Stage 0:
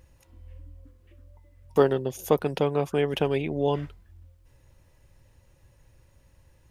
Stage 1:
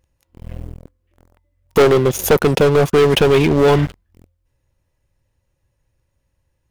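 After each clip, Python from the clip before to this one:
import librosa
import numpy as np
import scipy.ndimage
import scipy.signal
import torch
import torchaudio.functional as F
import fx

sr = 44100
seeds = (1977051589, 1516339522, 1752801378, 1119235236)

y = fx.leveller(x, sr, passes=5)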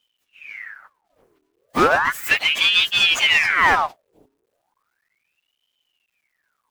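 y = fx.partial_stretch(x, sr, pct=112)
y = fx.quant_dither(y, sr, seeds[0], bits=12, dither='none')
y = fx.ring_lfo(y, sr, carrier_hz=1700.0, swing_pct=80, hz=0.35)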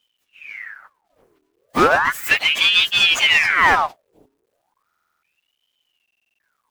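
y = fx.buffer_glitch(x, sr, at_s=(4.86, 6.03), block=2048, repeats=7)
y = y * librosa.db_to_amplitude(1.5)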